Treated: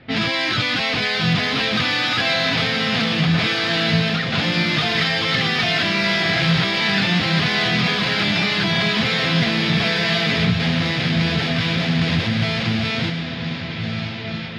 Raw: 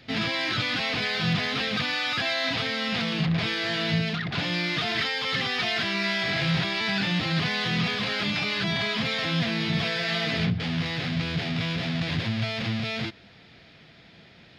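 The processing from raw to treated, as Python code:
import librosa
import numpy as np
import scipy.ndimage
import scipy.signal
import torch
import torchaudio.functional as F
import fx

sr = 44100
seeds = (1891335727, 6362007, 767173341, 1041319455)

y = fx.echo_diffused(x, sr, ms=1463, feedback_pct=44, wet_db=-6)
y = fx.env_lowpass(y, sr, base_hz=2000.0, full_db=-23.0)
y = F.gain(torch.from_numpy(y), 6.5).numpy()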